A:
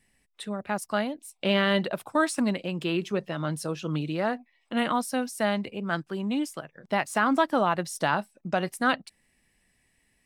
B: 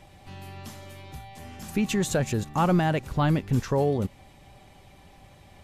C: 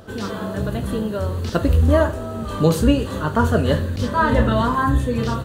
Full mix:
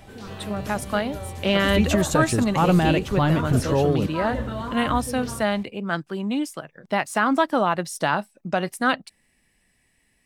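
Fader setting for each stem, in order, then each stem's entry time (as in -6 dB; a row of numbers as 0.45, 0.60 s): +3.0, +3.0, -12.0 dB; 0.00, 0.00, 0.00 s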